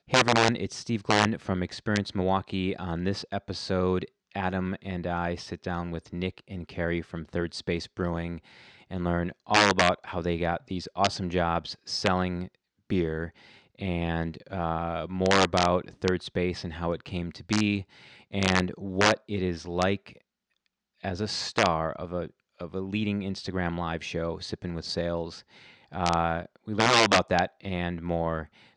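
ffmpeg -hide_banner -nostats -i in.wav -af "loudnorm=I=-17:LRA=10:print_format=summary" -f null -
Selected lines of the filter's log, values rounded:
Input Integrated:    -27.9 LUFS
Input True Peak:      -5.7 dBTP
Input LRA:             6.5 LU
Input Threshold:     -38.2 LUFS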